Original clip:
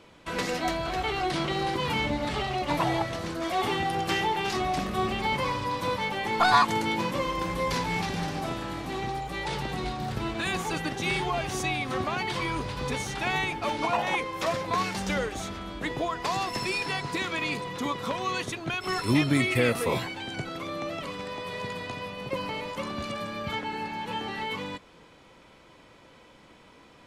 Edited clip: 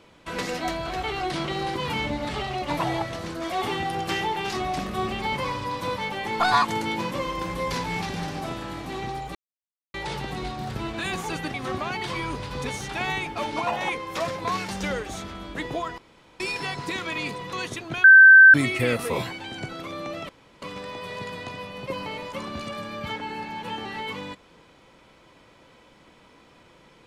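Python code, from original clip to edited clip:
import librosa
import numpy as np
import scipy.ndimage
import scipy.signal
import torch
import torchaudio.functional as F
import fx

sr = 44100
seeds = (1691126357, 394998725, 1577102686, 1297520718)

y = fx.edit(x, sr, fx.insert_silence(at_s=9.35, length_s=0.59),
    fx.cut(start_s=10.95, length_s=0.85),
    fx.room_tone_fill(start_s=16.24, length_s=0.42),
    fx.cut(start_s=17.79, length_s=0.5),
    fx.bleep(start_s=18.8, length_s=0.5, hz=1550.0, db=-6.5),
    fx.insert_room_tone(at_s=21.05, length_s=0.33), tone=tone)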